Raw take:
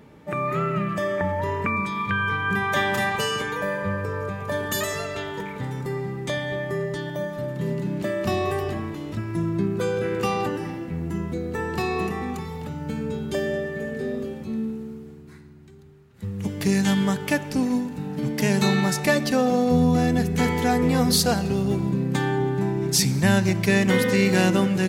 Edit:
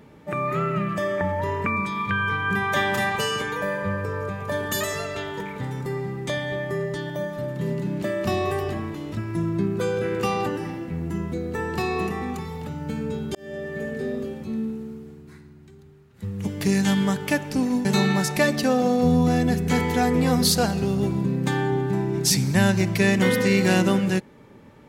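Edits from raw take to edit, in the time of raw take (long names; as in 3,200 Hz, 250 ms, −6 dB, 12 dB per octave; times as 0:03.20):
0:13.35–0:13.79: fade in
0:17.85–0:18.53: remove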